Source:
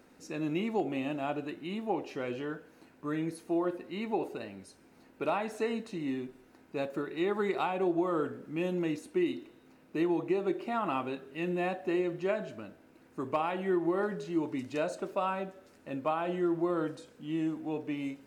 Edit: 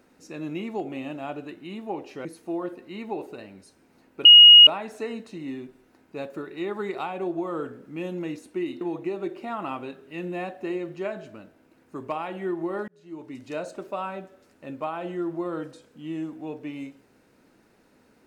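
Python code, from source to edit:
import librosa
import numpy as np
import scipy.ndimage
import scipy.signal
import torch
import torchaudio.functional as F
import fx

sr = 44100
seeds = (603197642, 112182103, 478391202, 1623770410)

y = fx.edit(x, sr, fx.cut(start_s=2.25, length_s=1.02),
    fx.insert_tone(at_s=5.27, length_s=0.42, hz=2880.0, db=-6.0),
    fx.cut(start_s=9.41, length_s=0.64),
    fx.fade_in_span(start_s=14.12, length_s=0.69), tone=tone)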